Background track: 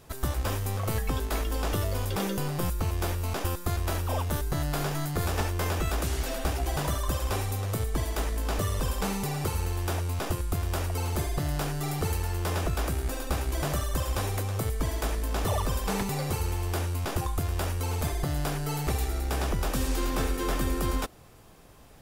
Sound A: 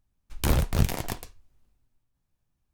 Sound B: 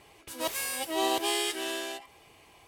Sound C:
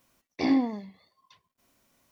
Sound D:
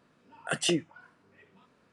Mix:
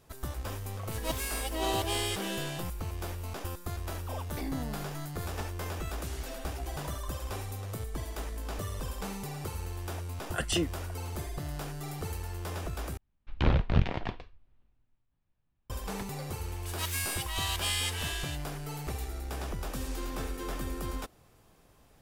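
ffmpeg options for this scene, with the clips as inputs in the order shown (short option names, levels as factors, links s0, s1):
-filter_complex "[2:a]asplit=2[s0][s1];[0:a]volume=0.398[s2];[s0]acrusher=bits=8:mode=log:mix=0:aa=0.000001[s3];[3:a]acompressor=threshold=0.0316:ratio=6:attack=3.2:release=140:knee=1:detection=peak[s4];[1:a]lowpass=f=3500:w=0.5412,lowpass=f=3500:w=1.3066[s5];[s1]highpass=f=1100:w=0.5412,highpass=f=1100:w=1.3066[s6];[s2]asplit=2[s7][s8];[s7]atrim=end=12.974[s9];[s5]atrim=end=2.73,asetpts=PTS-STARTPTS,volume=0.841[s10];[s8]atrim=start=15.696[s11];[s3]atrim=end=2.67,asetpts=PTS-STARTPTS,volume=0.668,afade=t=in:d=0.004:c=hsin,afade=t=out:st=2.666:d=0.004:c=hsin,adelay=640[s12];[s4]atrim=end=2.11,asetpts=PTS-STARTPTS,volume=0.562,afade=t=in:d=0.004:c=hsin,afade=t=out:st=2.106:d=0.004:c=hsin,adelay=3980[s13];[4:a]atrim=end=1.92,asetpts=PTS-STARTPTS,volume=0.75,afade=t=in:d=0.004:c=hsin,afade=t=out:st=1.916:d=0.004:c=hsin,adelay=9870[s14];[s6]atrim=end=2.67,asetpts=PTS-STARTPTS,volume=0.944,afade=t=in:d=0.004:c=hsin,afade=t=out:st=2.666:d=0.004:c=hsin,adelay=16380[s15];[s9][s10]acrossfade=d=0.004:c1=hsin:c2=hsin[s16];[s16][s11]acrossfade=d=0.004:c1=hsin:c2=hsin[s17];[s17][s12][s13][s14][s15]amix=inputs=5:normalize=0"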